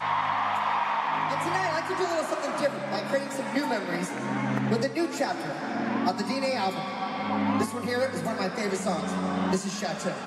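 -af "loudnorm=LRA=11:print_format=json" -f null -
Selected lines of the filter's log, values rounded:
"input_i" : "-28.3",
"input_tp" : "-12.8",
"input_lra" : "1.3",
"input_thresh" : "-38.3",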